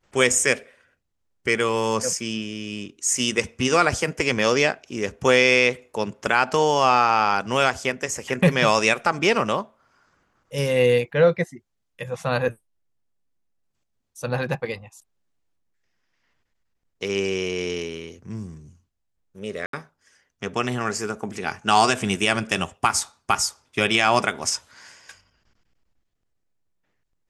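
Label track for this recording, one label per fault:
19.660000	19.730000	dropout 73 ms

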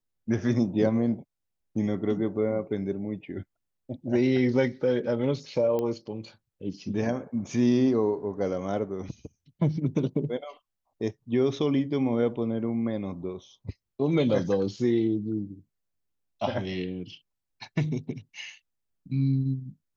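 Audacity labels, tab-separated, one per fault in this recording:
5.790000	5.790000	pop -18 dBFS

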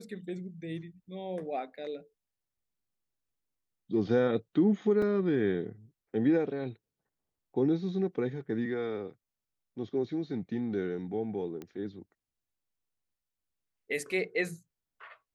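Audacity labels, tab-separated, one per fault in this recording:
5.020000	5.020000	dropout 3.6 ms
11.620000	11.620000	pop -28 dBFS

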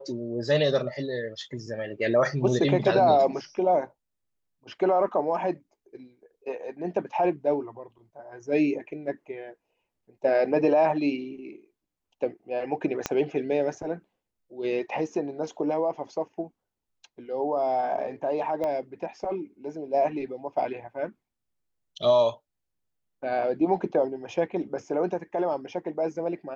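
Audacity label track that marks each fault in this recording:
13.060000	13.060000	pop -11 dBFS
18.640000	18.640000	pop -19 dBFS

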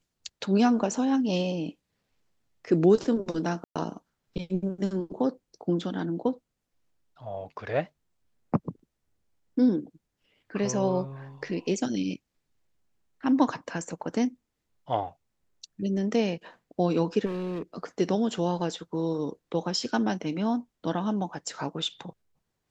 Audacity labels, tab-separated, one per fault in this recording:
3.640000	3.760000	dropout 116 ms
17.250000	17.620000	clipped -28.5 dBFS

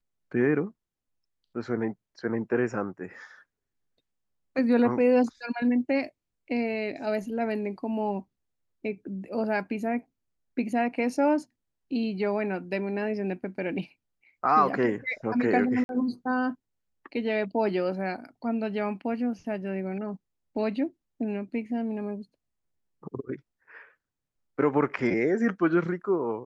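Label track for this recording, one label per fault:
15.840000	15.890000	dropout 51 ms

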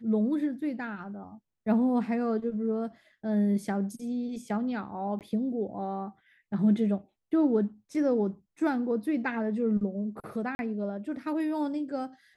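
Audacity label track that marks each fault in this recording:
5.190000	5.210000	dropout 18 ms
10.550000	10.590000	dropout 41 ms

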